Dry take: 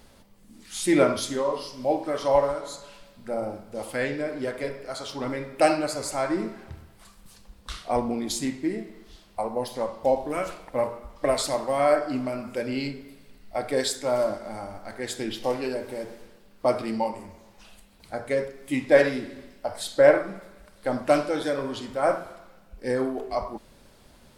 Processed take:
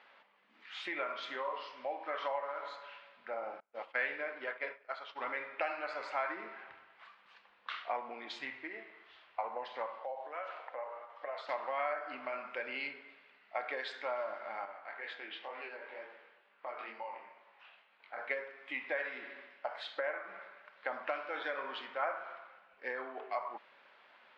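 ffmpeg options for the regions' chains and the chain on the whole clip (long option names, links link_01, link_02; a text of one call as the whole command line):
ffmpeg -i in.wav -filter_complex "[0:a]asettb=1/sr,asplit=3[link_01][link_02][link_03];[link_01]atrim=end=3.604[link_04];[link_02]atrim=start=3.6:end=5.28,asetpts=PTS-STARTPTS,afade=type=in:duration=0.004:curve=qsin,afade=type=out:start_time=1.676:duration=0.004:curve=qsin,agate=range=-33dB:threshold=-31dB:ratio=3:release=100:detection=peak,lowpass=9400[link_05];[link_03]atrim=start=5.276[link_06];[link_04][link_05]acrossfade=duration=0.004:curve1=hsin:curve2=qsin[link_07];[link_07][link_06]acrossfade=duration=0.004:curve1=qsin:curve2=hsin,asettb=1/sr,asplit=3[link_08][link_09][link_10];[link_08]atrim=end=8.394[link_11];[link_09]atrim=start=8.39:end=9.47,asetpts=PTS-STARTPTS,afade=type=in:duration=0.004:curve=qsin,afade=type=out:start_time=1.076:duration=0.004:curve=qsin,lowshelf=frequency=140:width_type=q:width=3:gain=6.5,acrusher=bits=9:mode=log:mix=0:aa=0.000001[link_12];[link_10]atrim=start=9.466[link_13];[link_11][link_12]acrossfade=duration=0.004:curve1=hsin:curve2=qsin[link_14];[link_14][link_13]acrossfade=duration=0.004:curve1=qsin:curve2=hsin,asettb=1/sr,asplit=3[link_15][link_16][link_17];[link_15]atrim=end=9.994[link_18];[link_16]atrim=start=9.99:end=11.49,asetpts=PTS-STARTPTS,afade=type=in:duration=0.004:curve=qsin,afade=type=out:start_time=1.496:duration=0.004:curve=qsin,acompressor=threshold=-38dB:ratio=3:attack=3.2:release=140:knee=1:detection=peak,highpass=360,equalizer=frequency=520:width_type=q:width=4:gain=6,equalizer=frequency=740:width_type=q:width=4:gain=5,equalizer=frequency=2400:width_type=q:width=4:gain=-5,lowpass=frequency=8400:width=0.5412,lowpass=frequency=8400:width=1.3066[link_19];[link_17]atrim=start=11.486[link_20];[link_18][link_19]acrossfade=duration=0.004:curve1=hsin:curve2=qsin[link_21];[link_21][link_20]acrossfade=duration=0.004:curve1=qsin:curve2=hsin,asettb=1/sr,asplit=3[link_22][link_23][link_24];[link_22]atrim=end=14.654[link_25];[link_23]atrim=start=14.65:end=18.18,asetpts=PTS-STARTPTS,afade=type=in:duration=0.004:curve=qsin,afade=type=out:start_time=3.526:duration=0.004:curve=qsin,highpass=210,lowpass=4800,acompressor=threshold=-30dB:ratio=5:attack=3.2:release=140:knee=1:detection=peak,flanger=delay=19.5:depth=5.6:speed=2.1[link_26];[link_24]atrim=start=18.176[link_27];[link_25][link_26]acrossfade=duration=0.004:curve1=hsin:curve2=qsin[link_28];[link_28][link_27]acrossfade=duration=0.004:curve1=qsin:curve2=hsin,lowpass=frequency=2700:width=0.5412,lowpass=frequency=2700:width=1.3066,acompressor=threshold=-27dB:ratio=8,highpass=1100,volume=3dB" out.wav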